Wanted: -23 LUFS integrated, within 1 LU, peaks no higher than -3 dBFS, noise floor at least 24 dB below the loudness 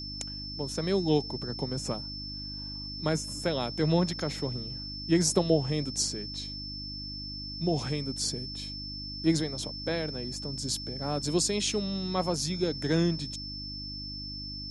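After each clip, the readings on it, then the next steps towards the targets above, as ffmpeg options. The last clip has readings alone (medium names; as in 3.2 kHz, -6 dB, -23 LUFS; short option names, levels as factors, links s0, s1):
hum 50 Hz; highest harmonic 300 Hz; hum level -40 dBFS; steady tone 5.3 kHz; tone level -38 dBFS; loudness -31.0 LUFS; peak level -11.0 dBFS; loudness target -23.0 LUFS
-> -af "bandreject=f=50:t=h:w=4,bandreject=f=100:t=h:w=4,bandreject=f=150:t=h:w=4,bandreject=f=200:t=h:w=4,bandreject=f=250:t=h:w=4,bandreject=f=300:t=h:w=4"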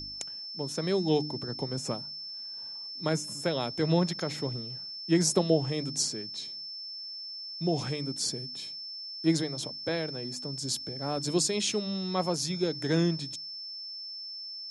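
hum not found; steady tone 5.3 kHz; tone level -38 dBFS
-> -af "bandreject=f=5300:w=30"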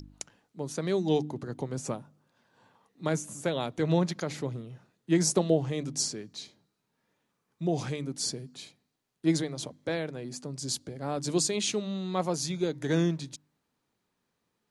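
steady tone not found; loudness -31.0 LUFS; peak level -12.0 dBFS; loudness target -23.0 LUFS
-> -af "volume=2.51"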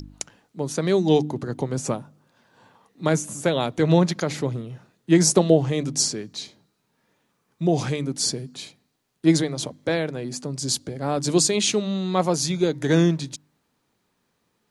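loudness -23.0 LUFS; peak level -4.0 dBFS; noise floor -72 dBFS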